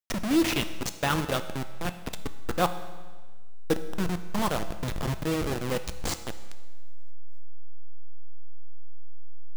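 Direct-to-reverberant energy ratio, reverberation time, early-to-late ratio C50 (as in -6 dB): 9.5 dB, 1.4 s, 12.0 dB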